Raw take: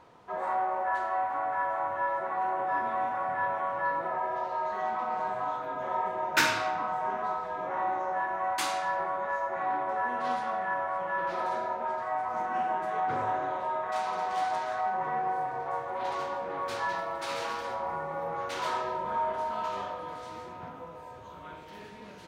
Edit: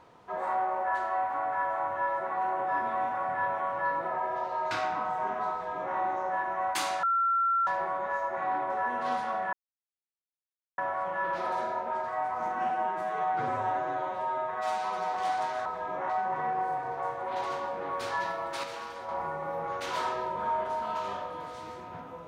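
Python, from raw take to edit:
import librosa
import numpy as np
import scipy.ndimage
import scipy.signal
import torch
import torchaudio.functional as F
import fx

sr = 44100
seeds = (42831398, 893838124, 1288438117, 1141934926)

y = fx.edit(x, sr, fx.cut(start_s=4.71, length_s=1.83),
    fx.duplicate(start_s=7.35, length_s=0.44, to_s=14.78),
    fx.insert_tone(at_s=8.86, length_s=0.64, hz=1360.0, db=-23.0),
    fx.insert_silence(at_s=10.72, length_s=1.25),
    fx.stretch_span(start_s=12.64, length_s=1.63, factor=1.5),
    fx.clip_gain(start_s=17.32, length_s=0.45, db=-5.5), tone=tone)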